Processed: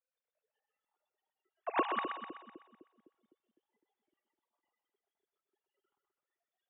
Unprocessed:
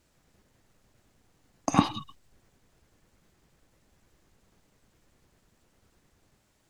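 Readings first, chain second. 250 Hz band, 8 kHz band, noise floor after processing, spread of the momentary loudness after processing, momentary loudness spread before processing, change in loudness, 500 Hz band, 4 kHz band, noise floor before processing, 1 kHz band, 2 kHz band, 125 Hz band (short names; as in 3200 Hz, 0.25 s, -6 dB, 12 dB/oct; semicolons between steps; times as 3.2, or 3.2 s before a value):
-14.0 dB, under -35 dB, under -85 dBFS, 15 LU, 13 LU, -8.0 dB, -1.0 dB, -11.0 dB, -70 dBFS, -4.0 dB, +0.5 dB, under -30 dB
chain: sine-wave speech; spectral noise reduction 15 dB; split-band echo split 390 Hz, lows 0.254 s, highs 0.126 s, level -6 dB; gain -8.5 dB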